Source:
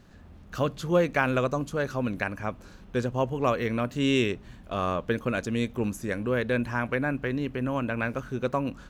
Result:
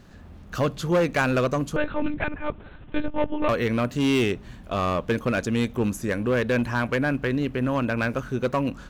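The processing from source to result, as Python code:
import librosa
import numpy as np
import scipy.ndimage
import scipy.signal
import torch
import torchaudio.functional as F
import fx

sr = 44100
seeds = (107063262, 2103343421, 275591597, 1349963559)

p1 = 10.0 ** (-22.5 / 20.0) * (np.abs((x / 10.0 ** (-22.5 / 20.0) + 3.0) % 4.0 - 2.0) - 1.0)
p2 = x + (p1 * librosa.db_to_amplitude(-3.0))
y = fx.lpc_monotone(p2, sr, seeds[0], pitch_hz=300.0, order=10, at=(1.76, 3.49))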